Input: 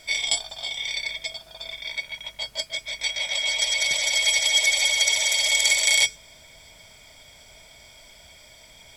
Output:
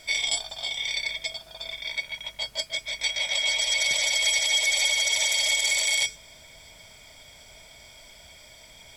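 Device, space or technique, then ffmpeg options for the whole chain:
clipper into limiter: -af "asoftclip=type=hard:threshold=-5.5dB,alimiter=limit=-13dB:level=0:latency=1:release=56"

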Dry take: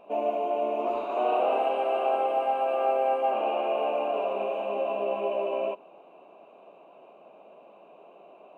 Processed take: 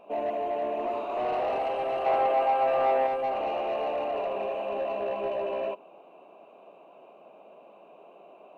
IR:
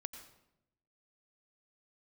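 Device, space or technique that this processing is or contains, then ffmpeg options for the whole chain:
saturation between pre-emphasis and de-emphasis: -filter_complex "[0:a]highshelf=f=2.2k:g=11,asoftclip=type=tanh:threshold=-22.5dB,highshelf=f=2.2k:g=-11,asettb=1/sr,asplit=3[a][b][c];[a]atrim=end=2.064[d];[b]atrim=start=2.06:end=3.07,asetpts=PTS-STARTPTS,afade=t=in:d=0.004:c=qsin,afade=t=out:st=1.006:d=0.004:c=qsin,equalizer=f=1.1k:w=0.32:g=5.5[e];[c]atrim=start=3.066[f];[d][e]acrossfade=d=0.004:c1=hsin:c2=qsin[g];[g][f]acrossfade=d=0.004:c1=qsin:c2=hsin"

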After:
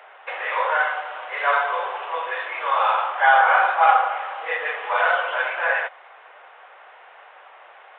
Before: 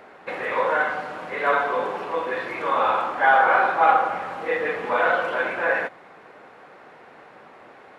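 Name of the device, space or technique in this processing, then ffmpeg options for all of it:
musical greeting card: -af "aresample=8000,aresample=44100,highpass=f=620:w=0.5412,highpass=f=620:w=1.3066,equalizer=f=3k:t=o:w=0.31:g=5,volume=2dB"

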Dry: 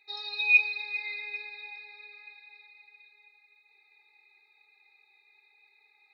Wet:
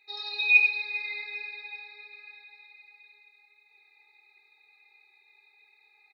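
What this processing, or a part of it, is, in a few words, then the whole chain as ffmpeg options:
slapback doubling: -filter_complex "[0:a]asplit=3[a][b][c];[b]adelay=27,volume=-7dB[d];[c]adelay=95,volume=-5dB[e];[a][d][e]amix=inputs=3:normalize=0"

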